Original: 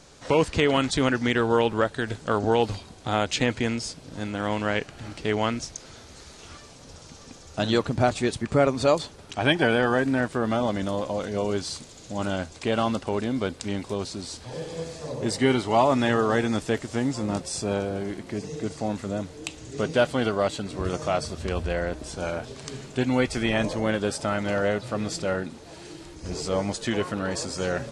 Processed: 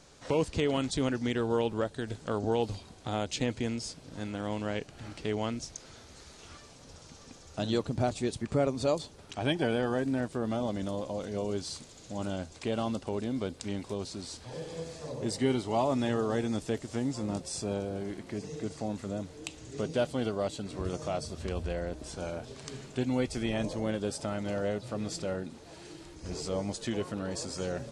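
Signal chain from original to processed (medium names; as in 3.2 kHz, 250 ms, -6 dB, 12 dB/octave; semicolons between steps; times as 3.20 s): dynamic bell 1.6 kHz, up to -8 dB, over -39 dBFS, Q 0.72; trim -5.5 dB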